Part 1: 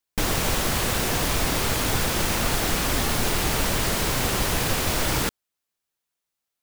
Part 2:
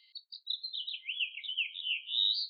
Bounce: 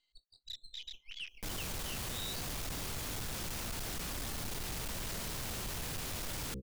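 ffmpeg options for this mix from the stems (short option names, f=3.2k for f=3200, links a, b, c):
-filter_complex "[0:a]bandreject=f=65.62:t=h:w=4,bandreject=f=131.24:t=h:w=4,bandreject=f=196.86:t=h:w=4,bandreject=f=262.48:t=h:w=4,bandreject=f=328.1:t=h:w=4,bandreject=f=393.72:t=h:w=4,bandreject=f=459.34:t=h:w=4,bandreject=f=524.96:t=h:w=4,acrossover=split=220|3000[a][b][c];[b]acompressor=threshold=-32dB:ratio=2.5[d];[a][d][c]amix=inputs=3:normalize=0,adelay=1250,volume=-2dB[e];[1:a]aeval=exprs='if(lt(val(0),0),0.447*val(0),val(0))':c=same,afwtdn=0.0112,volume=2dB[f];[e][f]amix=inputs=2:normalize=0,asoftclip=type=tanh:threshold=-27dB,alimiter=level_in=11.5dB:limit=-24dB:level=0:latency=1:release=14,volume=-11.5dB"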